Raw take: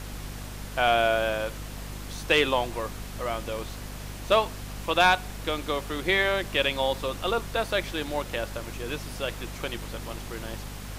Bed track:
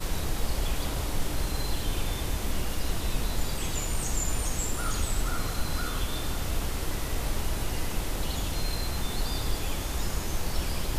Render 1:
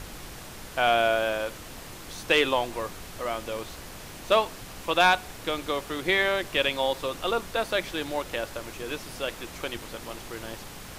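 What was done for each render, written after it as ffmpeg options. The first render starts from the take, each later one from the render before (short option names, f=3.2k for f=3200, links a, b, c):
-af "bandreject=f=50:t=h:w=4,bandreject=f=100:t=h:w=4,bandreject=f=150:t=h:w=4,bandreject=f=200:t=h:w=4,bandreject=f=250:t=h:w=4"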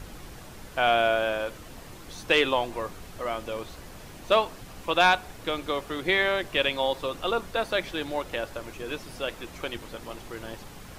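-af "afftdn=nr=6:nf=-43"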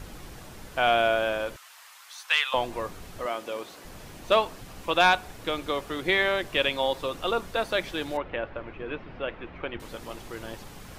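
-filter_complex "[0:a]asettb=1/sr,asplit=3[a][b][c];[a]atrim=end=1.564[d];[b]atrim=start=1.56:end=2.54,asetpts=PTS-STARTPTS,afade=t=in:d=0.004:c=qsin,afade=t=out:st=0.976:d=0.004:c=qsin,highpass=f=1k:w=0.5412,highpass=f=1k:w=1.3066[e];[c]atrim=start=2.536[f];[d][e]acrossfade=d=0.004:c1=hsin:c2=qsin[g];[g][f]acrossfade=d=0.004:c1=qsin:c2=hsin,asettb=1/sr,asplit=3[h][i][j];[h]atrim=end=3.264[k];[i]atrim=start=3.26:end=3.85,asetpts=PTS-STARTPTS,afade=t=in:d=0.004:c=qsin,afade=t=out:st=0.586:d=0.004:c=qsin,highpass=250[l];[j]atrim=start=3.846[m];[k][l]acrossfade=d=0.004:c1=hsin:c2=qsin[n];[n][m]acrossfade=d=0.004:c1=qsin:c2=hsin,asettb=1/sr,asplit=3[o][p][q];[o]atrim=end=8.174[r];[p]atrim=start=8.17:end=9.8,asetpts=PTS-STARTPTS,afade=t=in:d=0.004:c=qsin,afade=t=out:st=1.626:d=0.004:c=qsin,lowpass=f=2.7k:w=0.5412,lowpass=f=2.7k:w=1.3066[s];[q]atrim=start=9.796[t];[r][s]acrossfade=d=0.004:c1=hsin:c2=qsin[u];[u][t]acrossfade=d=0.004:c1=qsin:c2=hsin"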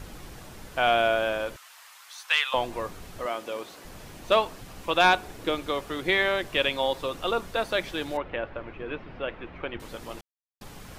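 -filter_complex "[0:a]asettb=1/sr,asplit=3[a][b][c];[a]atrim=end=5.044[d];[b]atrim=start=5.04:end=5.55,asetpts=PTS-STARTPTS,afade=t=in:d=0.004:c=qsin,afade=t=out:st=0.506:d=0.004:c=qsin,equalizer=f=350:w=1.5:g=6[e];[c]atrim=start=5.546[f];[d][e]acrossfade=d=0.004:c1=hsin:c2=qsin[g];[g][f]acrossfade=d=0.004:c1=qsin:c2=hsin,asplit=3[h][i][j];[h]atrim=end=10.21,asetpts=PTS-STARTPTS,afade=t=out:st=10.206:d=0.004:c=hsin[k];[i]atrim=start=10.21:end=10.61,asetpts=PTS-STARTPTS,volume=0[l];[j]atrim=start=10.61,asetpts=PTS-STARTPTS,afade=t=in:d=0.004:c=hsin[m];[k][l][m]concat=n=3:v=0:a=1"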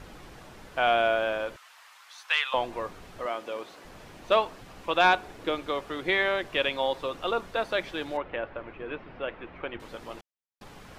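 -af "lowpass=f=3.2k:p=1,lowshelf=f=230:g=-6.5"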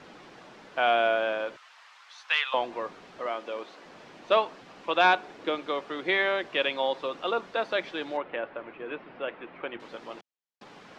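-filter_complex "[0:a]acrossover=split=160 6700:gain=0.0631 1 0.0708[a][b][c];[a][b][c]amix=inputs=3:normalize=0"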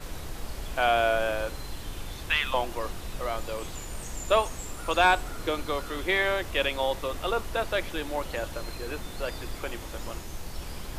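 -filter_complex "[1:a]volume=-8dB[a];[0:a][a]amix=inputs=2:normalize=0"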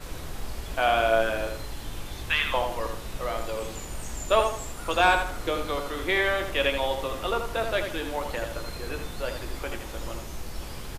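-filter_complex "[0:a]asplit=2[a][b];[b]adelay=18,volume=-10.5dB[c];[a][c]amix=inputs=2:normalize=0,asplit=2[d][e];[e]adelay=80,lowpass=f=3.8k:p=1,volume=-6dB,asplit=2[f][g];[g]adelay=80,lowpass=f=3.8k:p=1,volume=0.35,asplit=2[h][i];[i]adelay=80,lowpass=f=3.8k:p=1,volume=0.35,asplit=2[j][k];[k]adelay=80,lowpass=f=3.8k:p=1,volume=0.35[l];[d][f][h][j][l]amix=inputs=5:normalize=0"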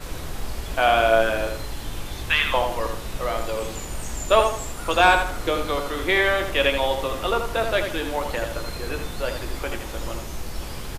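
-af "volume=4.5dB"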